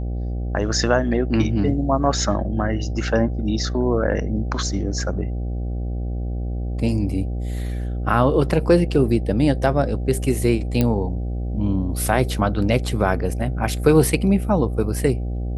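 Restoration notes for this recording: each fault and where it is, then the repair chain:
buzz 60 Hz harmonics 13 -25 dBFS
10.81 s: pop -7 dBFS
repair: de-click; de-hum 60 Hz, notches 13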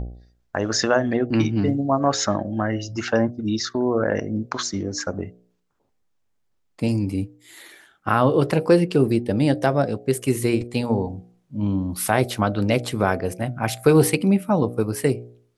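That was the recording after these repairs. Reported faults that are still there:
nothing left

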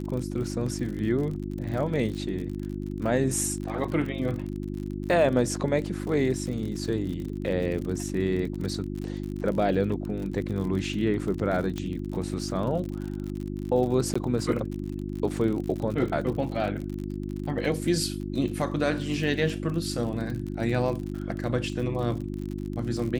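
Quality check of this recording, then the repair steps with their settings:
crackle 50 per s -33 dBFS
hum 50 Hz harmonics 7 -33 dBFS
11.78 s: pop -19 dBFS
14.14–14.15 s: dropout 15 ms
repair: de-click; de-hum 50 Hz, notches 7; interpolate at 14.14 s, 15 ms

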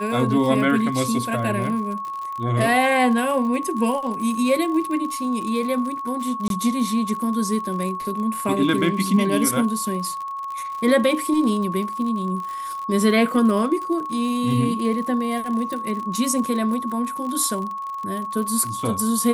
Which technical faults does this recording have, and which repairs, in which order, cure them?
crackle 57 per s -29 dBFS
whine 1.1 kHz -27 dBFS
6.48–6.50 s: dropout 22 ms
15.73 s: pop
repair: de-click; band-stop 1.1 kHz, Q 30; interpolate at 6.48 s, 22 ms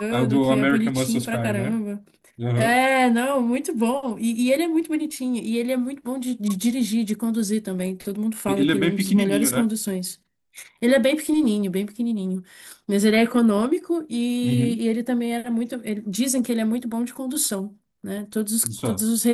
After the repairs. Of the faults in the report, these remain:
nothing left

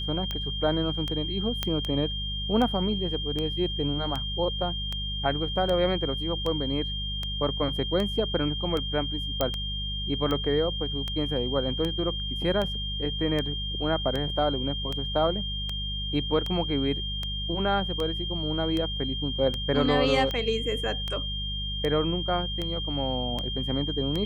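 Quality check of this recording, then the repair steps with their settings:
hum 50 Hz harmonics 4 -34 dBFS
tick 78 rpm -17 dBFS
whine 3.2 kHz -32 dBFS
1.63 s: pop -11 dBFS
9.41 s: pop -10 dBFS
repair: de-click; de-hum 50 Hz, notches 4; band-stop 3.2 kHz, Q 30

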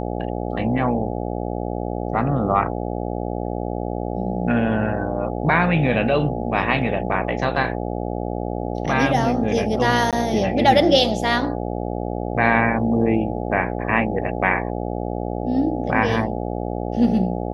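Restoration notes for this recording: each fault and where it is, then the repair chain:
buzz 60 Hz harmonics 14 -26 dBFS
10.11–10.13 s: dropout 17 ms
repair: de-hum 60 Hz, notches 14; interpolate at 10.11 s, 17 ms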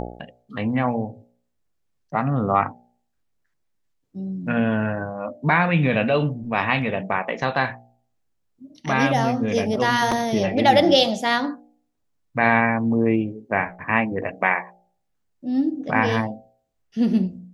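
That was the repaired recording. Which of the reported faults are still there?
nothing left

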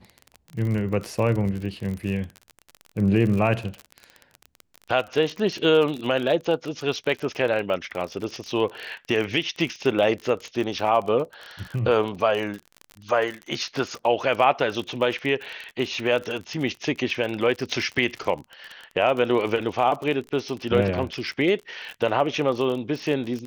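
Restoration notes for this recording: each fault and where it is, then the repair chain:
crackle 37 per s -29 dBFS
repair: de-click

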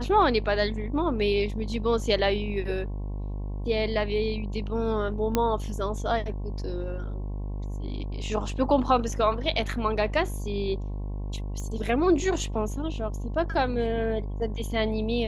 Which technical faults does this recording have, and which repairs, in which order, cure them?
buzz 50 Hz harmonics 22 -32 dBFS
5.35 s: pop -9 dBFS
11.60 s: pop -25 dBFS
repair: de-click; de-hum 50 Hz, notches 22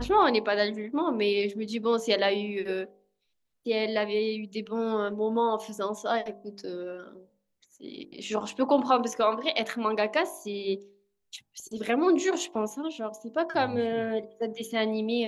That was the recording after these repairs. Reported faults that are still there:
11.60 s: pop

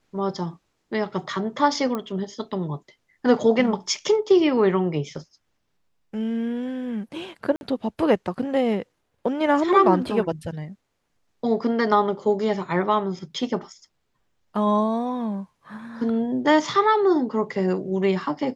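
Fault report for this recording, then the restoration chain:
1.95 s: pop -16 dBFS
7.56–7.61 s: dropout 51 ms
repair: de-click; interpolate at 7.56 s, 51 ms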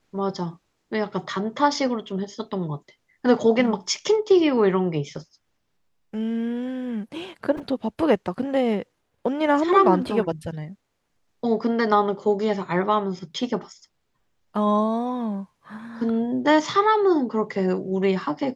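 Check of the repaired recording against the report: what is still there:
nothing left

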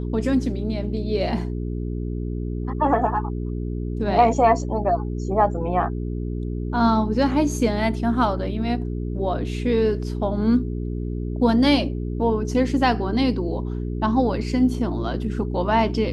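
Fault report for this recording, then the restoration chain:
hum 60 Hz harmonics 7 -27 dBFS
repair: de-hum 60 Hz, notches 7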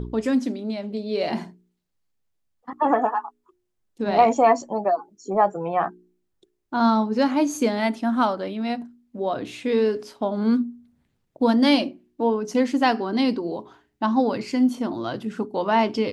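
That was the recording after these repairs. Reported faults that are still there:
nothing left

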